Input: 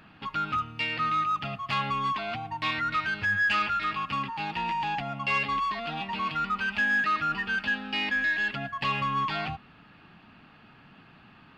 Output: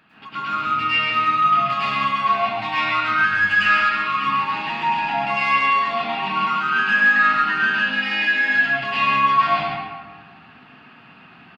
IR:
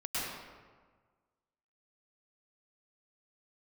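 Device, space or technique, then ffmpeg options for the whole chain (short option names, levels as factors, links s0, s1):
PA in a hall: -filter_complex "[0:a]highpass=f=180:p=1,equalizer=f=2200:t=o:w=1.7:g=3,aecho=1:1:136:0.562[s0];[1:a]atrim=start_sample=2205[s1];[s0][s1]afir=irnorm=-1:irlink=0"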